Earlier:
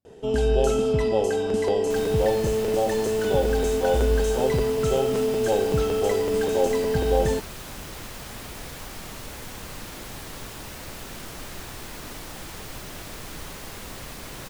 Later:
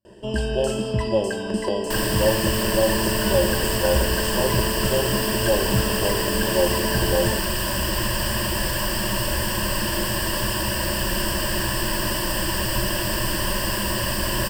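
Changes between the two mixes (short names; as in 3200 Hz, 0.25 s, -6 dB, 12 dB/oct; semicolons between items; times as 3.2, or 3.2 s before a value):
second sound +11.5 dB; master: add ripple EQ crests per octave 1.3, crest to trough 15 dB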